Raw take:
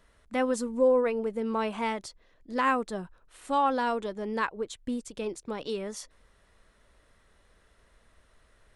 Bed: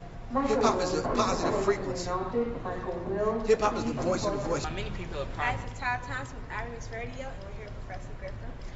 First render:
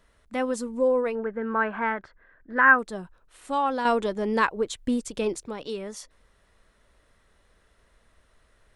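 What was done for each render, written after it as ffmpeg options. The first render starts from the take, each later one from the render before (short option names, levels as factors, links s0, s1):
-filter_complex "[0:a]asettb=1/sr,asplit=3[s0][s1][s2];[s0]atrim=end=1.154[s3];[s1]atrim=start=1.15:end=2.79,asetpts=PTS-STARTPTS,afade=t=in:d=0.004:c=qsin,afade=t=out:st=1.636:d=0.004:c=qsin,lowpass=f=1600:t=q:w=7.8[s4];[s2]atrim=start=2.786[s5];[s3][s4]acrossfade=d=0.004:c1=hsin:c2=qsin[s6];[s6][s5]acrossfade=d=0.004:c1=qsin:c2=hsin,asettb=1/sr,asplit=3[s7][s8][s9];[s7]atrim=end=3.854[s10];[s8]atrim=start=3.85:end=5.48,asetpts=PTS-STARTPTS,afade=t=in:d=0.004:c=qsin,afade=t=out:st=1.626:d=0.004:c=qsin,acontrast=76[s11];[s9]atrim=start=5.476[s12];[s10][s11]acrossfade=d=0.004:c1=hsin:c2=qsin[s13];[s13][s12]acrossfade=d=0.004:c1=qsin:c2=hsin"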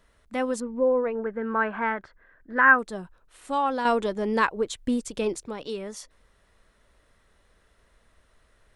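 -filter_complex "[0:a]asettb=1/sr,asplit=3[s0][s1][s2];[s0]atrim=end=0.604[s3];[s1]atrim=start=0.6:end=1.26,asetpts=PTS-STARTPTS,afade=t=in:d=0.004:c=qsin,afade=t=out:st=0.656:d=0.004:c=qsin,lowpass=1900[s4];[s2]atrim=start=1.256[s5];[s3][s4]acrossfade=d=0.004:c1=hsin:c2=qsin[s6];[s6][s5]acrossfade=d=0.004:c1=qsin:c2=hsin"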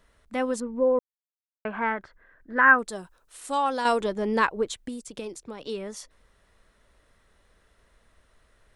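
-filter_complex "[0:a]asettb=1/sr,asplit=3[s0][s1][s2];[s0]atrim=end=2.884[s3];[s1]atrim=start=2.88:end=4.01,asetpts=PTS-STARTPTS,afade=t=in:d=0.004:c=qsin,afade=t=out:st=1.126:d=0.004:c=qsin,bass=f=250:g=-6,treble=f=4000:g=10[s4];[s2]atrim=start=4.006[s5];[s3][s4]acrossfade=d=0.004:c1=hsin:c2=qsin[s6];[s6][s5]acrossfade=d=0.004:c1=qsin:c2=hsin,asettb=1/sr,asplit=3[s7][s8][s9];[s7]atrim=end=4.754[s10];[s8]atrim=start=4.75:end=5.67,asetpts=PTS-STARTPTS,afade=t=in:d=0.004:c=qsin,afade=t=out:st=0.916:d=0.004:c=qsin,acrossover=split=110|4800[s11][s12][s13];[s11]acompressor=threshold=0.00112:ratio=4[s14];[s12]acompressor=threshold=0.0178:ratio=4[s15];[s13]acompressor=threshold=0.00708:ratio=4[s16];[s14][s15][s16]amix=inputs=3:normalize=0[s17];[s9]atrim=start=5.666[s18];[s10][s17]acrossfade=d=0.004:c1=hsin:c2=qsin[s19];[s19][s18]acrossfade=d=0.004:c1=qsin:c2=hsin,asplit=3[s20][s21][s22];[s20]atrim=end=0.99,asetpts=PTS-STARTPTS,afade=t=out:st=0.986:d=0.004:c=hsin[s23];[s21]atrim=start=0.99:end=1.65,asetpts=PTS-STARTPTS,volume=0[s24];[s22]atrim=start=1.65,asetpts=PTS-STARTPTS,afade=t=in:d=0.004:c=hsin[s25];[s23][s24][s25]concat=n=3:v=0:a=1"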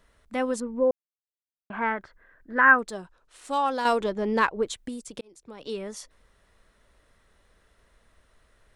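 -filter_complex "[0:a]asettb=1/sr,asplit=3[s0][s1][s2];[s0]atrim=end=2.804[s3];[s1]atrim=start=2.8:end=4.63,asetpts=PTS-STARTPTS,afade=t=in:d=0.004:c=qsin,afade=t=out:st=1.826:d=0.004:c=qsin,adynamicsmooth=sensitivity=6.5:basefreq=6300[s4];[s2]atrim=start=4.626[s5];[s3][s4]acrossfade=d=0.004:c1=hsin:c2=qsin[s6];[s6][s5]acrossfade=d=0.004:c1=qsin:c2=hsin,asplit=4[s7][s8][s9][s10];[s7]atrim=end=0.91,asetpts=PTS-STARTPTS,afade=t=out:st=0.906:d=0.004:c=hsin[s11];[s8]atrim=start=0.91:end=1.7,asetpts=PTS-STARTPTS,volume=0[s12];[s9]atrim=start=1.7:end=5.21,asetpts=PTS-STARTPTS,afade=t=in:d=0.004:c=hsin,afade=t=out:st=3.506:d=0.004:c=hsin[s13];[s10]atrim=start=5.21,asetpts=PTS-STARTPTS,afade=t=in:d=0.53[s14];[s11][s12][s13][s14]concat=n=4:v=0:a=1"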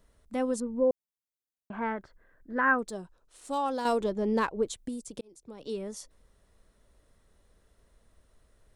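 -af "equalizer=f=1900:t=o:w=2.5:g=-9.5"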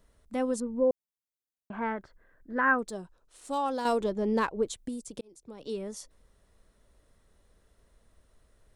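-af anull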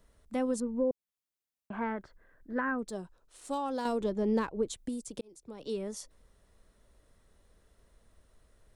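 -filter_complex "[0:a]acrossover=split=360[s0][s1];[s1]acompressor=threshold=0.0251:ratio=5[s2];[s0][s2]amix=inputs=2:normalize=0"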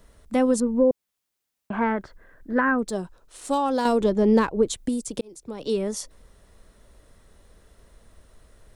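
-af "volume=3.35"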